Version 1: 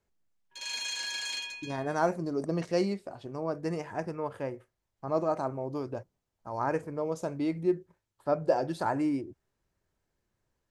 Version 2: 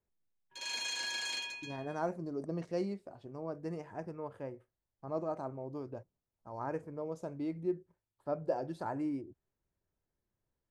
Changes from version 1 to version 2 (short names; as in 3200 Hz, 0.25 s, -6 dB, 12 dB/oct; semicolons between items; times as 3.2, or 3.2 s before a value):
speech -10.0 dB; master: add tilt shelf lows +3.5 dB, about 1200 Hz